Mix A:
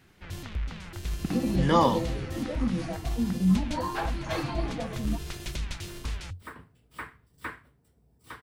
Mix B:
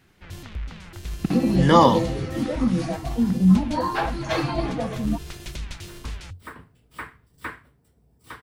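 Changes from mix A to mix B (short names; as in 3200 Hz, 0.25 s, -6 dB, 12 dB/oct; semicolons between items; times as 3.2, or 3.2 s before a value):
speech +7.0 dB; second sound +3.5 dB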